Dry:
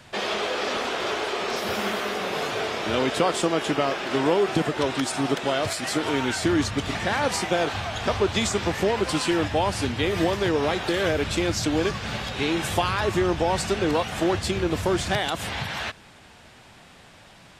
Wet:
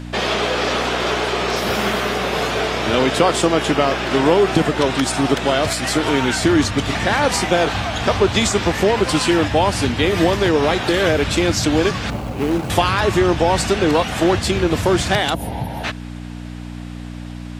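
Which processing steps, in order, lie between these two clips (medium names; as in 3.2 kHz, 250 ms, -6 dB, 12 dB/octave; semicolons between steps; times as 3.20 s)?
12.10–12.70 s: median filter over 25 samples; 15.34–15.84 s: time-frequency box 980–9000 Hz -16 dB; mains buzz 60 Hz, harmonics 5, -38 dBFS -2 dB/octave; trim +7 dB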